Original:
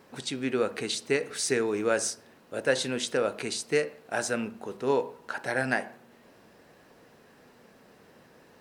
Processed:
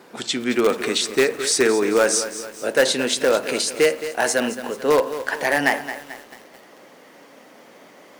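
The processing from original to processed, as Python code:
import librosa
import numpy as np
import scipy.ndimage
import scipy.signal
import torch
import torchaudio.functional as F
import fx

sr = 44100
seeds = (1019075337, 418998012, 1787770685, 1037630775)

p1 = fx.speed_glide(x, sr, from_pct=92, to_pct=118)
p2 = scipy.signal.sosfilt(scipy.signal.butter(2, 230.0, 'highpass', fs=sr, output='sos'), p1)
p3 = (np.mod(10.0 ** (18.5 / 20.0) * p2 + 1.0, 2.0) - 1.0) / 10.0 ** (18.5 / 20.0)
p4 = p2 + F.gain(torch.from_numpy(p3), -10.5).numpy()
p5 = fx.echo_crushed(p4, sr, ms=219, feedback_pct=55, bits=7, wet_db=-11.5)
y = F.gain(torch.from_numpy(p5), 7.5).numpy()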